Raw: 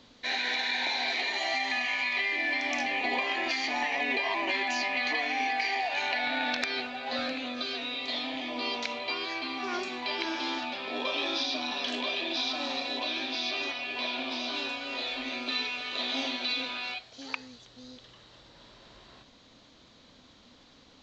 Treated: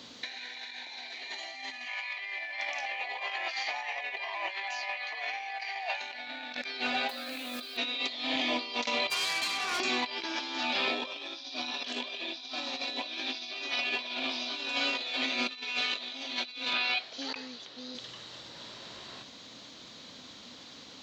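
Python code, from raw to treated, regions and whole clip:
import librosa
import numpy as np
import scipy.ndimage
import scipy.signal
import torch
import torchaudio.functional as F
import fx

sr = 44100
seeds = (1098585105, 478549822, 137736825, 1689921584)

y = fx.chain(x, sr, fx.highpass(hz=540.0, slope=24),
    fx.high_shelf(hz=4200.0, db=-11.0), at=(1.88, 6.01))
y = fx.chain(y, sr, fx.ellip_bandpass(low_hz=230.0, high_hz=5500.0, order=3, stop_db=40),
    fx.quant_dither(seeds[0], bits=8, dither='none'),
    fx.env_flatten(amount_pct=100), at=(7.09, 7.77))
y = fx.chain(y, sr, fx.highpass(hz=610.0, slope=12),
    fx.tube_stage(drive_db=34.0, bias=0.75), at=(9.1, 9.8))
y = fx.chain(y, sr, fx.bandpass_edges(low_hz=220.0, high_hz=5400.0),
    fx.air_absorb(metres=53.0), at=(16.73, 17.95))
y = scipy.signal.sosfilt(scipy.signal.butter(2, 110.0, 'highpass', fs=sr, output='sos'), y)
y = fx.high_shelf(y, sr, hz=2600.0, db=7.5)
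y = fx.over_compress(y, sr, threshold_db=-34.0, ratio=-0.5)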